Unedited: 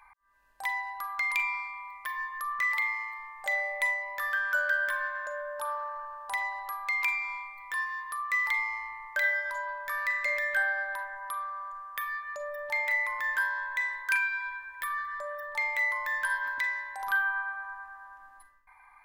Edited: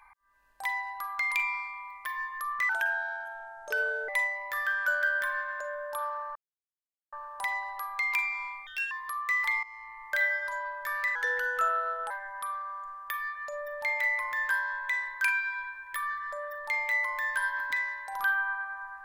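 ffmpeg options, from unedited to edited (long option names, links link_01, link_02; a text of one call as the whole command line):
ffmpeg -i in.wav -filter_complex "[0:a]asplit=9[link_01][link_02][link_03][link_04][link_05][link_06][link_07][link_08][link_09];[link_01]atrim=end=2.694[link_10];[link_02]atrim=start=2.69:end=3.75,asetpts=PTS-STARTPTS,asetrate=33516,aresample=44100[link_11];[link_03]atrim=start=3.746:end=6.02,asetpts=PTS-STARTPTS,afade=type=out:start_time=2.27:duration=0.004:curve=hsin,apad=pad_dur=0.77[link_12];[link_04]atrim=start=6.02:end=7.564,asetpts=PTS-STARTPTS,afade=type=in:duration=0.004:curve=hsin[link_13];[link_05]atrim=start=7.56:end=7.94,asetpts=PTS-STARTPTS,asetrate=67914,aresample=44100[link_14];[link_06]atrim=start=7.936:end=8.66,asetpts=PTS-STARTPTS,afade=type=out:start_time=0.72:duration=0.004:curve=hsin:silence=0.158489[link_15];[link_07]atrim=start=8.66:end=10.184,asetpts=PTS-STARTPTS,afade=type=in:duration=0.5:silence=0.158489[link_16];[link_08]atrim=start=10.18:end=10.98,asetpts=PTS-STARTPTS,asetrate=37044,aresample=44100[link_17];[link_09]atrim=start=10.976[link_18];[link_10][link_11]acrossfade=duration=0.004:curve1=hsin:curve2=hsin[link_19];[link_12][link_13]concat=n=2:v=0:a=1[link_20];[link_19][link_20]acrossfade=duration=0.004:curve1=hsin:curve2=hsin[link_21];[link_21][link_14]acrossfade=duration=0.004:curve1=hsin:curve2=hsin[link_22];[link_15][link_16]concat=n=2:v=0:a=1[link_23];[link_22][link_23]acrossfade=duration=0.004:curve1=hsin:curve2=hsin[link_24];[link_24][link_17]acrossfade=duration=0.004:curve1=hsin:curve2=hsin[link_25];[link_25][link_18]acrossfade=duration=0.004:curve1=hsin:curve2=hsin" out.wav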